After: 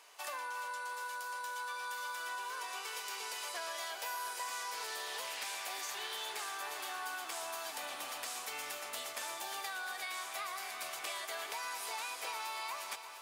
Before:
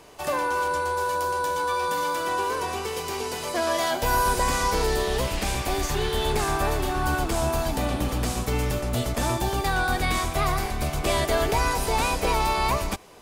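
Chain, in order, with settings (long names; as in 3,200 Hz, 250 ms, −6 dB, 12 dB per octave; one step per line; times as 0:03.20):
high-pass filter 1,100 Hz 12 dB per octave
downward compressor, threshold −33 dBFS, peak gain reduction 10 dB
feedback echo at a low word length 349 ms, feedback 80%, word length 10 bits, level −12 dB
level −5.5 dB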